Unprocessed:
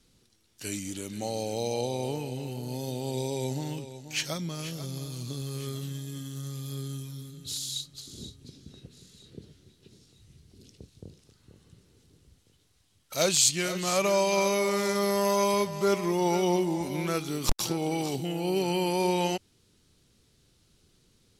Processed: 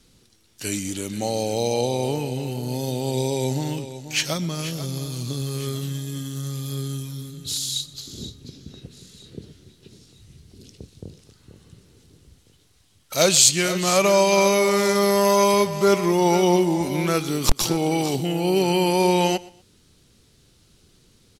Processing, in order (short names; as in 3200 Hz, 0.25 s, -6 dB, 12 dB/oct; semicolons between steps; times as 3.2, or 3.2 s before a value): 7.94–8.82 bell 9000 Hz -10 dB 0.23 oct; on a send: feedback echo 0.122 s, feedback 30%, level -21.5 dB; on the sum: gain +7.5 dB